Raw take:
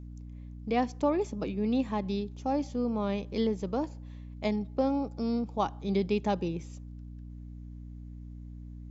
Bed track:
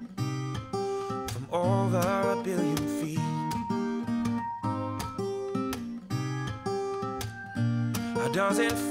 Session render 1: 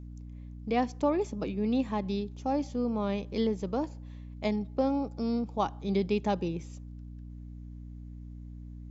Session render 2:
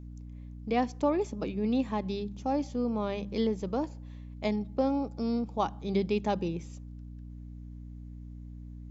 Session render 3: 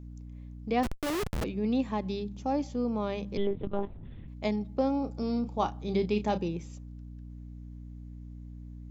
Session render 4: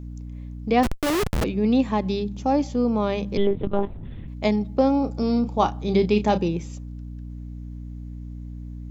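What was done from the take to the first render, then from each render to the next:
no processing that can be heard
hum removal 50 Hz, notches 4
0:00.83–0:01.44: comparator with hysteresis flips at −34 dBFS; 0:03.37–0:04.28: one-pitch LPC vocoder at 8 kHz 200 Hz; 0:05.00–0:06.38: double-tracking delay 33 ms −10.5 dB
level +8.5 dB

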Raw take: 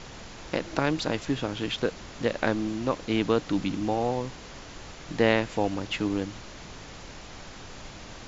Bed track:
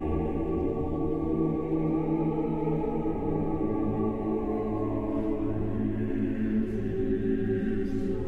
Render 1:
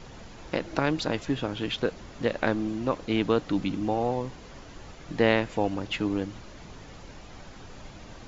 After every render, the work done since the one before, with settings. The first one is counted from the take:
broadband denoise 7 dB, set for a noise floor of −44 dBFS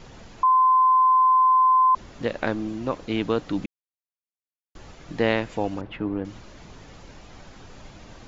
0:00.43–0:01.95: beep over 1,030 Hz −14 dBFS
0:03.66–0:04.75: silence
0:05.81–0:06.25: low-pass filter 1,700 Hz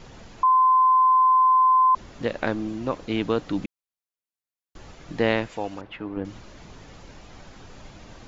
0:05.47–0:06.17: low-shelf EQ 430 Hz −9 dB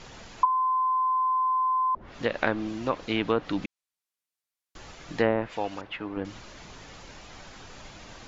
tilt shelving filter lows −4 dB, about 650 Hz
treble cut that deepens with the level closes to 620 Hz, closed at −16 dBFS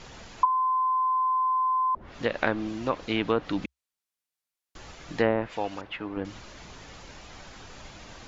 parametric band 66 Hz +4.5 dB 0.36 octaves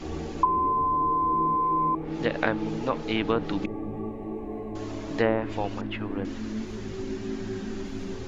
mix in bed track −5.5 dB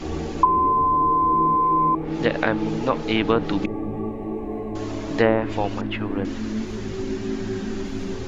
level +5.5 dB
brickwall limiter −3 dBFS, peak gain reduction 3 dB

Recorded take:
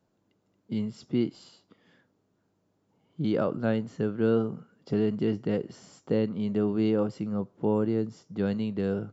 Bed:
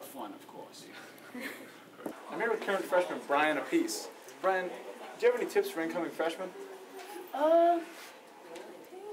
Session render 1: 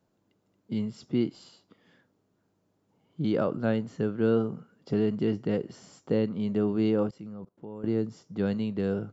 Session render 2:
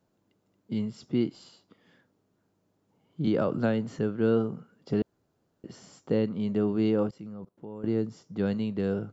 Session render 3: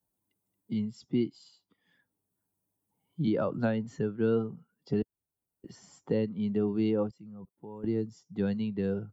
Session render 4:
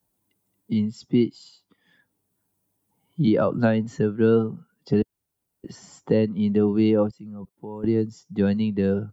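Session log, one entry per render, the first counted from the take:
0:07.09–0:07.84: output level in coarse steps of 20 dB
0:03.27–0:03.99: multiband upward and downward compressor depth 100%; 0:05.02–0:05.64: fill with room tone
spectral dynamics exaggerated over time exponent 1.5; multiband upward and downward compressor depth 40%
level +8.5 dB

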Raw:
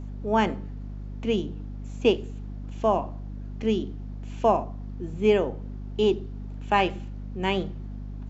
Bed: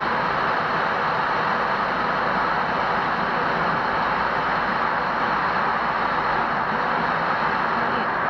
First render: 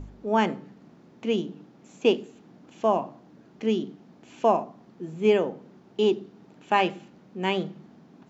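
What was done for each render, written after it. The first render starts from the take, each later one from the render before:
hum removal 50 Hz, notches 5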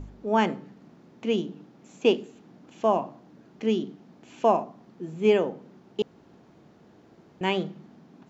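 0:06.02–0:07.41: fill with room tone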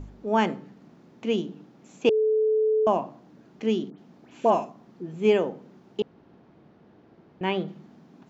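0:02.09–0:02.87: beep over 434 Hz −19 dBFS
0:03.90–0:05.14: all-pass dispersion highs, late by 87 ms, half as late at 2,300 Hz
0:06.00–0:07.68: high-frequency loss of the air 170 metres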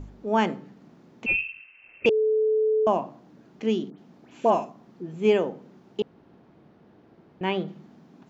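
0:01.26–0:02.06: voice inversion scrambler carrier 2,900 Hz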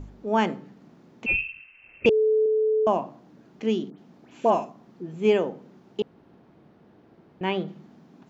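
0:01.33–0:02.46: low-shelf EQ 190 Hz +9.5 dB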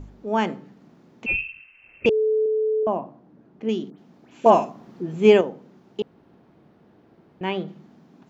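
0:02.83–0:03.69: low-pass filter 1,000 Hz 6 dB per octave
0:04.46–0:05.41: clip gain +6.5 dB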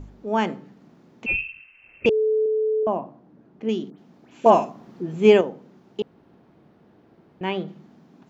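no processing that can be heard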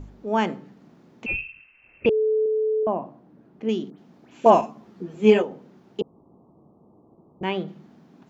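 0:01.27–0:03.01: high-frequency loss of the air 260 metres
0:04.61–0:05.51: string-ensemble chorus
0:06.01–0:07.43: Butterworth low-pass 1,200 Hz 96 dB per octave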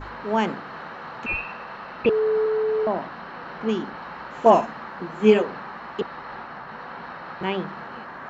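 mix in bed −15 dB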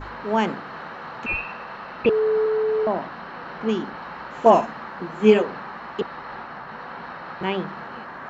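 level +1 dB
brickwall limiter −2 dBFS, peak gain reduction 1 dB

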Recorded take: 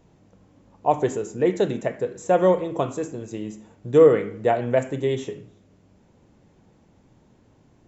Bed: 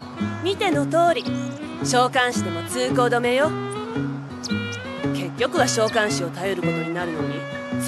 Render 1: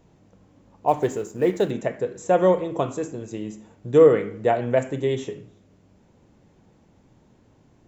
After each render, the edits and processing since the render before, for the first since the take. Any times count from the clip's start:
0:00.88–0:01.71: mu-law and A-law mismatch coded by A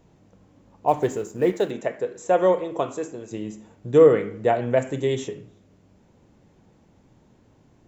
0:01.52–0:03.31: bass and treble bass −9 dB, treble −1 dB
0:04.87–0:05.28: high-shelf EQ 5,200 Hz +8 dB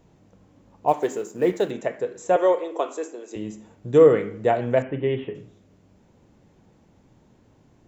0:00.92–0:01.50: high-pass filter 360 Hz → 140 Hz
0:02.36–0:03.36: high-pass filter 310 Hz 24 dB per octave
0:04.82–0:05.35: Chebyshev low-pass filter 3,000 Hz, order 5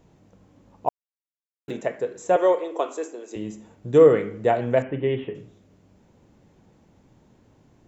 0:00.89–0:01.68: silence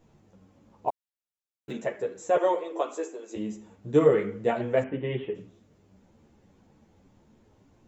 string-ensemble chorus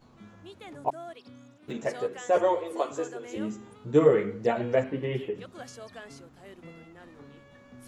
mix in bed −24.5 dB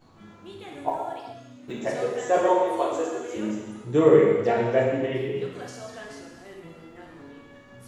reverb whose tail is shaped and stops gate 450 ms falling, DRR −2.5 dB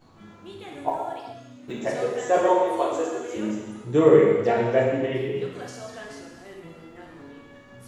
level +1 dB

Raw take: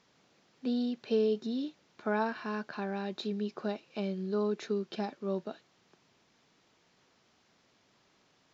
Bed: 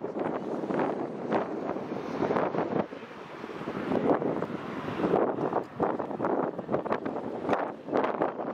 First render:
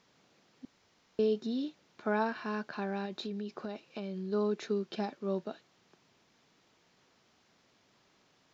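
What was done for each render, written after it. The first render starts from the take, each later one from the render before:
0:00.65–0:01.19: fill with room tone
0:03.05–0:04.32: downward compressor, threshold −34 dBFS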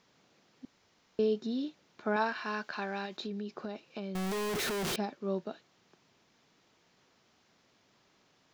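0:02.16–0:03.17: tilt shelving filter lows −6 dB, about 640 Hz
0:04.15–0:04.96: sign of each sample alone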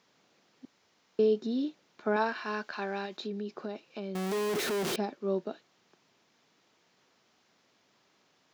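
dynamic equaliser 330 Hz, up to +6 dB, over −44 dBFS, Q 0.84
high-pass filter 190 Hz 6 dB per octave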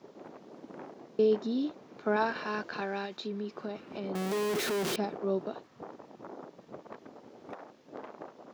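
mix in bed −17.5 dB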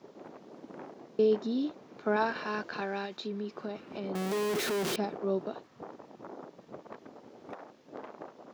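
no processing that can be heard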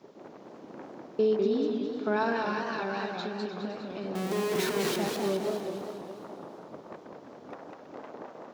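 delay that swaps between a low-pass and a high-pass 161 ms, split 950 Hz, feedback 65%, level −8 dB
feedback echo with a swinging delay time 204 ms, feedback 55%, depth 175 cents, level −4 dB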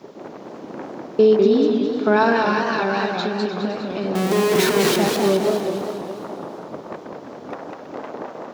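level +11.5 dB

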